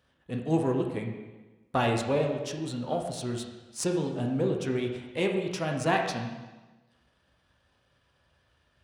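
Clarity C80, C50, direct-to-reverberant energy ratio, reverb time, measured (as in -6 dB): 6.5 dB, 4.5 dB, 1.5 dB, 1.2 s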